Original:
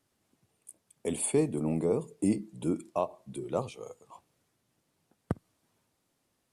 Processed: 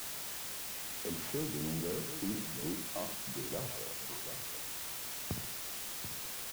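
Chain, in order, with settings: tracing distortion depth 0.43 ms; HPF 63 Hz 12 dB/oct; notches 60/120/180/240 Hz; flutter echo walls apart 11.7 m, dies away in 0.35 s; in parallel at -5.5 dB: wavefolder -28.5 dBFS; on the sum: low shelf 180 Hz +10.5 dB; on a send: echo 0.735 s -14 dB; on the sum: compressor 1.5:1, threshold -44 dBFS, peak gain reduction 9.5 dB; LPF 4500 Hz; requantised 6-bit, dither triangular; gain -6 dB

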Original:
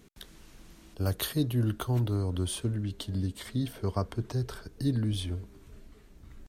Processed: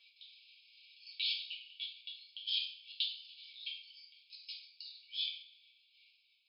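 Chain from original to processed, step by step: level quantiser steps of 20 dB; FFT band-pass 2200–5200 Hz; two-slope reverb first 0.49 s, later 1.9 s, from -24 dB, DRR -6.5 dB; gain +4.5 dB

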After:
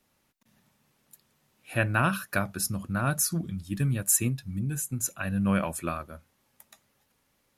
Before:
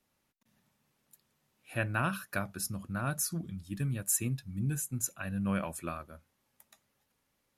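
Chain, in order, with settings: 4.29–5.05 compressor 4:1, threshold -34 dBFS, peak gain reduction 6 dB; gain +6.5 dB

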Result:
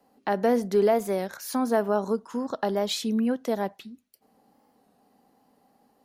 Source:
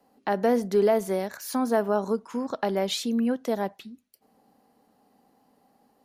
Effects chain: 1.99–2.9 bell 2300 Hz -11.5 dB 0.24 oct; record warp 33 1/3 rpm, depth 100 cents

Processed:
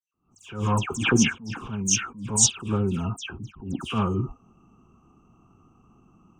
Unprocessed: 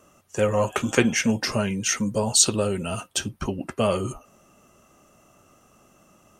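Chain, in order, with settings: Wiener smoothing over 25 samples; 1.39–1.83 compressor 2.5:1, threshold -31 dBFS, peak gain reduction 8 dB; fixed phaser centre 2900 Hz, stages 8; dispersion lows, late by 0.143 s, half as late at 2700 Hz; attack slew limiter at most 130 dB/s; gain +5.5 dB

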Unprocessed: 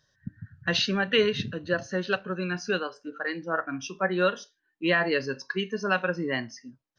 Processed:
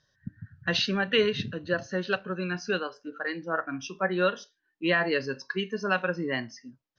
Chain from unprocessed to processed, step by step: LPF 6400 Hz 24 dB/oct; gain -1 dB

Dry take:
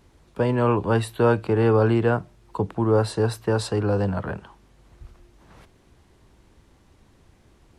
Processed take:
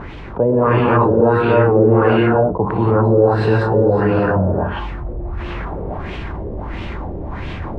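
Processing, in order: non-linear reverb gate 0.35 s rising, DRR -4 dB; reverse; upward compressor, threshold -30 dBFS; reverse; LFO low-pass sine 1.5 Hz 490–2900 Hz; fast leveller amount 50%; gain -2 dB

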